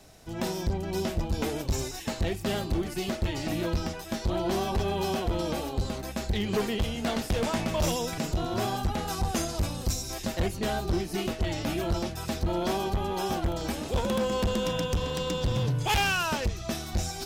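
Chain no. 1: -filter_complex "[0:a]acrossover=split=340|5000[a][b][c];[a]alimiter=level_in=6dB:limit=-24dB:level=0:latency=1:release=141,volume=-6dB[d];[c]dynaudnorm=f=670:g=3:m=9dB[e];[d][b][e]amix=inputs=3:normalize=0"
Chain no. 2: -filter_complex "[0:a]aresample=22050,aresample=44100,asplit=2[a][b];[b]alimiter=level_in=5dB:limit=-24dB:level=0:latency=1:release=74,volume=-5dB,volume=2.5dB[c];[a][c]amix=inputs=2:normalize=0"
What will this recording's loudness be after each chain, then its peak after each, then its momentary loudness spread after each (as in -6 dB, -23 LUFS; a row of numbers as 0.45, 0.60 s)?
-29.5, -25.5 LUFS; -11.5, -16.0 dBFS; 6, 4 LU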